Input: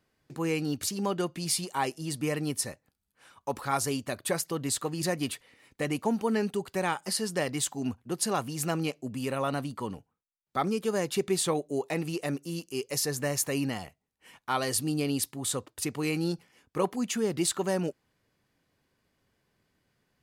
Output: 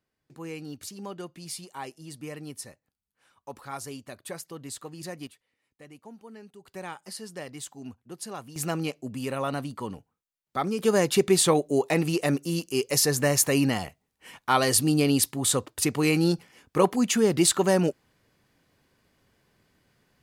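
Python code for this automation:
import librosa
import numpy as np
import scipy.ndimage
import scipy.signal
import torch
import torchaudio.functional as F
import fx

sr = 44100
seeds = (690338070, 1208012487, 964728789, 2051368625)

y = fx.gain(x, sr, db=fx.steps((0.0, -8.5), (5.27, -18.5), (6.65, -9.0), (8.56, 0.5), (10.79, 7.0)))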